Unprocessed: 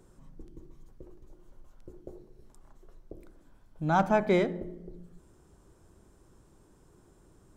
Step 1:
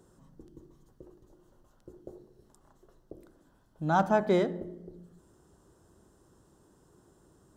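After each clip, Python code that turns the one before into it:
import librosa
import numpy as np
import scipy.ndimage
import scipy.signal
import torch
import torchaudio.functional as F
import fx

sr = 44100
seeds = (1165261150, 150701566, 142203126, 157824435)

y = fx.highpass(x, sr, hz=100.0, slope=6)
y = fx.peak_eq(y, sr, hz=2300.0, db=-12.5, octaves=0.26)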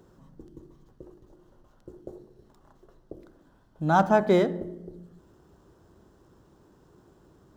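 y = scipy.signal.medfilt(x, 5)
y = y * 10.0 ** (4.5 / 20.0)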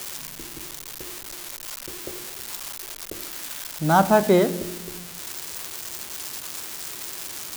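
y = x + 0.5 * 10.0 ** (-22.0 / 20.0) * np.diff(np.sign(x), prepend=np.sign(x[:1]))
y = y * 10.0 ** (3.5 / 20.0)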